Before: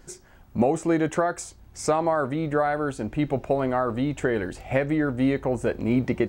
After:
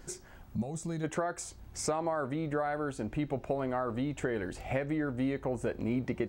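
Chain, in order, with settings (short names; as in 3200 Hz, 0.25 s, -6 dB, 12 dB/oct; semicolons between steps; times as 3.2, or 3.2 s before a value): spectral gain 0.55–1.04, 230–3300 Hz -13 dB; compressor 2:1, threshold -36 dBFS, peak gain reduction 10.5 dB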